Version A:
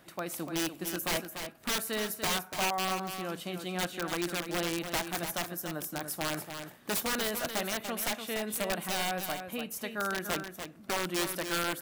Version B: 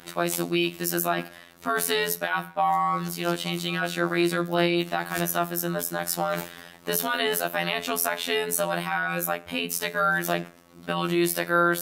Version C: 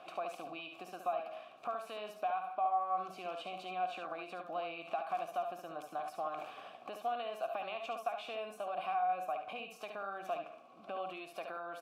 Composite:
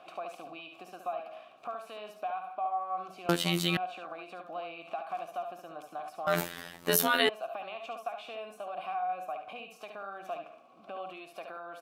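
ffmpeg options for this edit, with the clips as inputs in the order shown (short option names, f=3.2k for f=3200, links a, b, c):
-filter_complex "[1:a]asplit=2[a][b];[2:a]asplit=3[c][d][e];[c]atrim=end=3.292[f];[a]atrim=start=3.288:end=3.772[g];[d]atrim=start=3.768:end=6.272[h];[b]atrim=start=6.268:end=7.292[i];[e]atrim=start=7.288[j];[f][g]acrossfade=d=0.004:c1=hsin:c2=hsin[k];[k][h]acrossfade=d=0.004:c1=hsin:c2=hsin[l];[l][i]acrossfade=d=0.004:c1=hsin:c2=hsin[m];[m][j]acrossfade=d=0.004:c1=hsin:c2=hsin"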